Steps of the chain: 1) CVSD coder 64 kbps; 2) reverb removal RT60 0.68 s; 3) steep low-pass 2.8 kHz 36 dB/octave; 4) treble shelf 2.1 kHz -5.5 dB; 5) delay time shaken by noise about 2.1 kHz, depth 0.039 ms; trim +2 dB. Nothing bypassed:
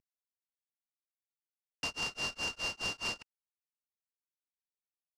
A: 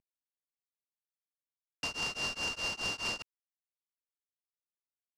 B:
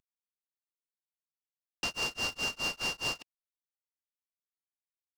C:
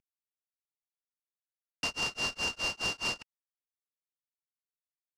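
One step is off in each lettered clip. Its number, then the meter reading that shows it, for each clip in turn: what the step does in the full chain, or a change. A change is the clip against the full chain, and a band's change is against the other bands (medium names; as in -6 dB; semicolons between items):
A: 2, momentary loudness spread change +2 LU; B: 3, loudness change +3.0 LU; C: 4, loudness change +3.5 LU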